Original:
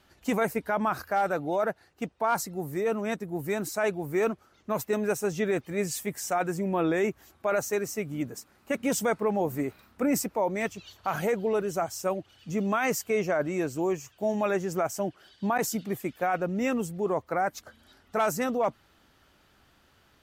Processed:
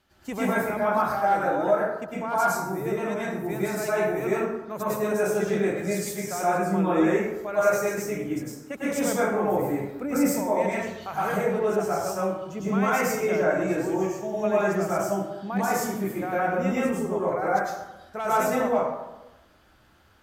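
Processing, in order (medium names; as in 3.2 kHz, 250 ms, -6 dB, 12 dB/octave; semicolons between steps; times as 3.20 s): plate-style reverb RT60 1 s, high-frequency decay 0.5×, pre-delay 90 ms, DRR -9 dB; trim -6.5 dB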